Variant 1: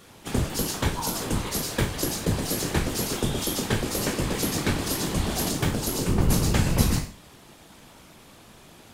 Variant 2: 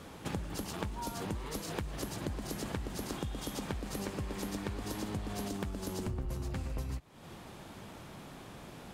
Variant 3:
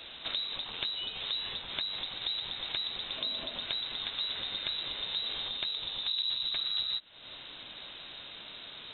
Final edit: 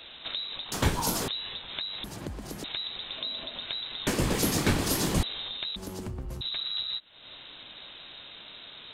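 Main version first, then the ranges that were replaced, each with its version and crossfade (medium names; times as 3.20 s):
3
0.72–1.28 s: from 1
2.04–2.64 s: from 2
4.07–5.23 s: from 1
5.76–6.41 s: from 2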